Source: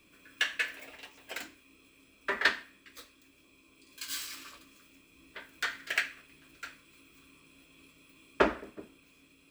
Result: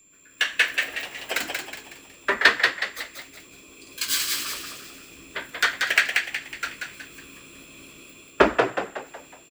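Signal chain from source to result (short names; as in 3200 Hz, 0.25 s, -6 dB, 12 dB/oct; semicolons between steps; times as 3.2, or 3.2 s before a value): AGC gain up to 14.5 dB; whine 7300 Hz -50 dBFS; harmonic-percussive split harmonic -5 dB; on a send: frequency-shifting echo 0.184 s, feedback 42%, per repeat +70 Hz, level -4 dB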